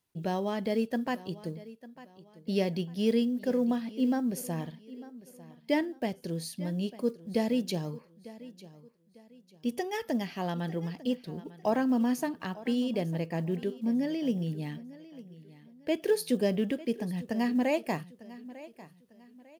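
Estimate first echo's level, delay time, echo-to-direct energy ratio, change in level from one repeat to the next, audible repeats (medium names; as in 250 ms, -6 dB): -18.0 dB, 899 ms, -17.5 dB, -9.5 dB, 2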